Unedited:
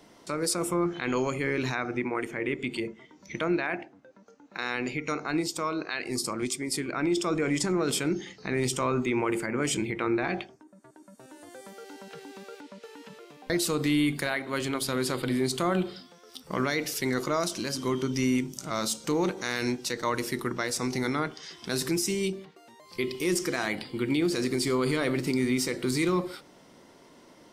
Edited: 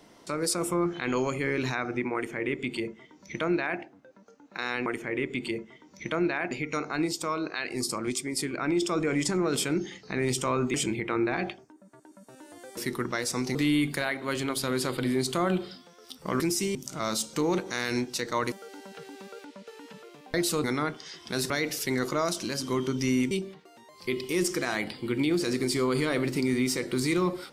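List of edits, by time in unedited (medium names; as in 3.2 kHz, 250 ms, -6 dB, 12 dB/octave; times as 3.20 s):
2.15–3.80 s: copy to 4.86 s
9.09–9.65 s: delete
11.68–13.80 s: swap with 20.23–21.01 s
16.65–18.46 s: swap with 21.87–22.22 s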